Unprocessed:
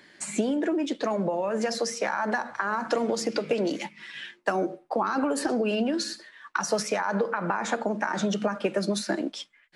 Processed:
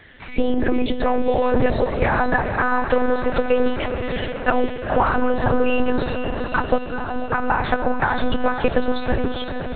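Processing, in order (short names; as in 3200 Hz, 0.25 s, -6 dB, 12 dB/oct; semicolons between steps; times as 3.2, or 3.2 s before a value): 1.29–1.83 octaver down 2 oct, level +3 dB; 6.78–7.3 octave resonator G#, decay 0.22 s; diffused feedback echo 0.46 s, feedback 64%, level -7.5 dB; monotone LPC vocoder at 8 kHz 250 Hz; gain +8 dB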